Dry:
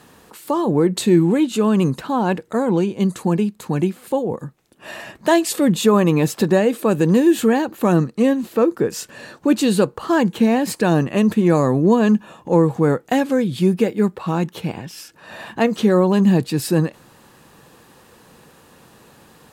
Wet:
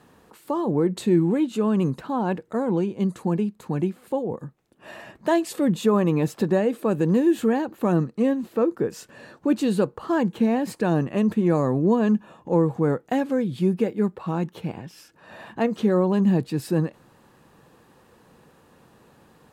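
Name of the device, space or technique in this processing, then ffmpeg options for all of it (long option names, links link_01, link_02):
behind a face mask: -af "highshelf=frequency=2200:gain=-8,volume=-5dB"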